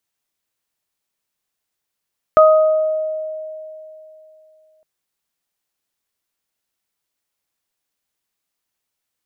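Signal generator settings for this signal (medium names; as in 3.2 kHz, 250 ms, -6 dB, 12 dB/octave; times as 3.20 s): additive tone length 2.46 s, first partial 626 Hz, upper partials -3 dB, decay 3.06 s, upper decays 0.92 s, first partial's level -6 dB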